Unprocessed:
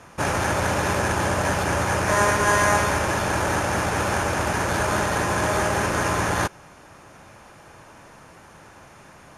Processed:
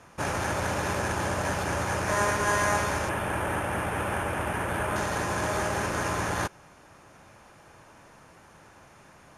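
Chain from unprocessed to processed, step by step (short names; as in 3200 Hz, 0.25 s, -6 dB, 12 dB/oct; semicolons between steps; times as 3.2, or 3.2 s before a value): 3.09–4.96 band shelf 5300 Hz -12.5 dB 1.1 oct; gain -6 dB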